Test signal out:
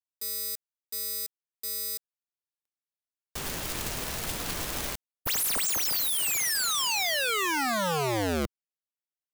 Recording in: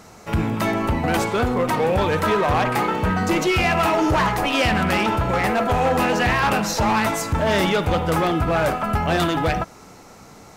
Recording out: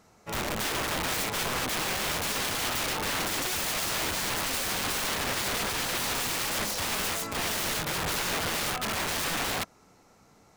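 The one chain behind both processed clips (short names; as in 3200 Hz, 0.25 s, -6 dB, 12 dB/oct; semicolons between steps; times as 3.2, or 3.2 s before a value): wrapped overs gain 19.5 dB; upward expander 1.5:1, over -43 dBFS; gain -5 dB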